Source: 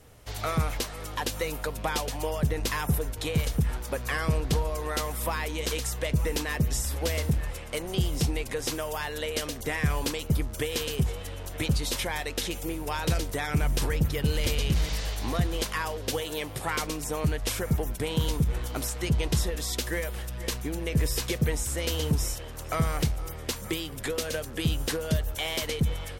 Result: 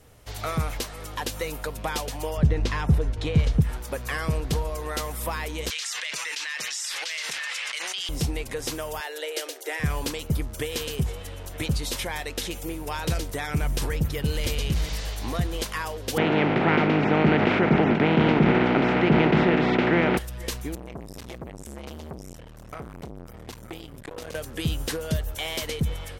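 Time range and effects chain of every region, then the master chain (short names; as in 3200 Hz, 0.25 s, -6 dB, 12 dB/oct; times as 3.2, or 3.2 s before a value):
2.37–3.62 LPF 4900 Hz + low shelf 300 Hz +7.5 dB
5.7–8.09 Butterworth band-pass 3400 Hz, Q 0.7 + fast leveller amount 100%
9–9.8 steep high-pass 320 Hz 72 dB/oct + notch 1100 Hz, Q 5.2
16.16–20.17 spectral contrast lowered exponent 0.38 + speaker cabinet 150–2100 Hz, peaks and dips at 160 Hz +7 dB, 230 Hz +8 dB, 360 Hz +6 dB, 530 Hz -3 dB, 1100 Hz -9 dB, 1700 Hz -6 dB + fast leveller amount 70%
20.75–24.35 high shelf 3000 Hz -7.5 dB + compressor 5:1, threshold -28 dBFS + core saturation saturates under 800 Hz
whole clip: dry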